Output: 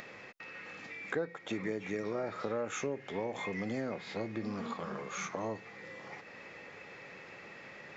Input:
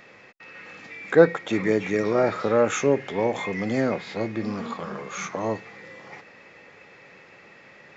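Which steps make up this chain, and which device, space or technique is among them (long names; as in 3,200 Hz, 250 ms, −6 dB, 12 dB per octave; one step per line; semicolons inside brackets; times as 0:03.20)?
upward and downward compression (upward compression, threshold −36 dBFS; downward compressor 5 to 1, threshold −27 dBFS, peak gain reduction 16.5 dB)
level −6 dB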